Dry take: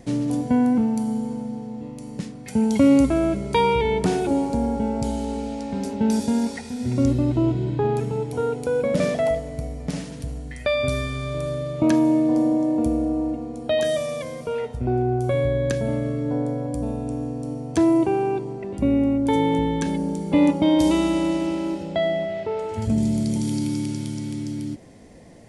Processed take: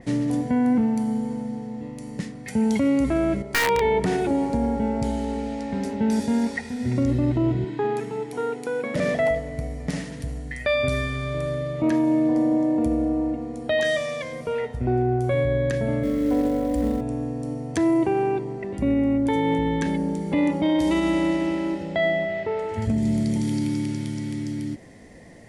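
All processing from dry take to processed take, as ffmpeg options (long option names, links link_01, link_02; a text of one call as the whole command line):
ffmpeg -i in.wav -filter_complex "[0:a]asettb=1/sr,asplit=3[link_01][link_02][link_03];[link_01]atrim=end=3.424[link_04];[link_02]atrim=start=3.42:end=4,asetpts=PTS-STARTPTS,afade=type=in:duration=0.004:curve=qsin,afade=type=out:start_time=0.576:duration=0.004:curve=qsin,agate=range=-10dB:threshold=-27dB:ratio=16:release=100:detection=peak,equalizer=frequency=690:width_type=o:width=1.9:gain=8.5,aeval=exprs='(mod(2.11*val(0)+1,2)-1)/2.11':channel_layout=same[link_05];[link_03]atrim=start=3.996[link_06];[link_04][link_05]acrossfade=duration=0.004:curve1=hsin:curve2=qsin[link_07];[link_07][link_06]acrossfade=duration=0.004:curve1=qsin:curve2=hsin,asettb=1/sr,asplit=3[link_08][link_09][link_10];[link_08]atrim=end=7.644[link_11];[link_09]atrim=start=7.64:end=8.96,asetpts=PTS-STARTPTS,afade=type=in:duration=0.004:curve=qsin,afade=type=out:start_time=1.316:duration=0.004:curve=qsin,highpass=260,equalizer=frequency=560:width_type=o:width=0.28:gain=-12.5[link_12];[link_10]atrim=start=8.956[link_13];[link_11][link_12]acrossfade=duration=0.004:curve1=hsin:curve2=qsin[link_14];[link_14][link_13]acrossfade=duration=0.004:curve1=qsin:curve2=hsin,asettb=1/sr,asplit=3[link_15][link_16][link_17];[link_15]atrim=end=13.814[link_18];[link_16]atrim=start=13.81:end=14.33,asetpts=PTS-STARTPTS,afade=type=in:duration=0.004:curve=qsin,afade=type=out:start_time=0.516:duration=0.004:curve=qsin,lowpass=7100,tiltshelf=frequency=970:gain=-3.5[link_19];[link_17]atrim=start=14.326[link_20];[link_18][link_19]acrossfade=duration=0.004:curve1=hsin:curve2=qsin[link_21];[link_21][link_20]acrossfade=duration=0.004:curve1=qsin:curve2=hsin,asettb=1/sr,asplit=3[link_22][link_23][link_24];[link_22]atrim=end=16.034[link_25];[link_23]atrim=start=16.03:end=17.01,asetpts=PTS-STARTPTS,afade=type=in:duration=0.004:curve=qsin,afade=type=out:start_time=0.976:duration=0.004:curve=qsin,aecho=1:1:3.9:0.89,atrim=end_sample=43218,acrusher=bits=6:mode=log:mix=0:aa=0.000001,aeval=exprs='val(0)+0.0141*(sin(2*PI*50*n/s)+sin(2*PI*2*50*n/s)/2+sin(2*PI*3*50*n/s)/3+sin(2*PI*4*50*n/s)/4+sin(2*PI*5*50*n/s)/5)':channel_layout=same[link_26];[link_24]atrim=start=17.006[link_27];[link_25][link_26]acrossfade=duration=0.004:curve1=hsin:curve2=qsin[link_28];[link_28][link_27]acrossfade=duration=0.004:curve1=qsin:curve2=hsin,equalizer=frequency=1900:width=4.8:gain=9.5,alimiter=limit=-14dB:level=0:latency=1:release=33,adynamicequalizer=threshold=0.00501:dfrequency=4200:dqfactor=0.7:tfrequency=4200:tqfactor=0.7:attack=5:release=100:ratio=0.375:range=2.5:mode=cutabove:tftype=highshelf" out.wav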